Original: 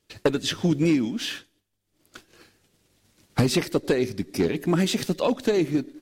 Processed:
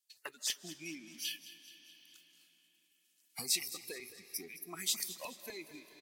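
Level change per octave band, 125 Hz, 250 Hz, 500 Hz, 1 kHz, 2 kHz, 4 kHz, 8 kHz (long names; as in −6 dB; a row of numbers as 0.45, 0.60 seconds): −33.5, −29.0, −27.0, −19.0, −13.0, −8.0, −1.5 decibels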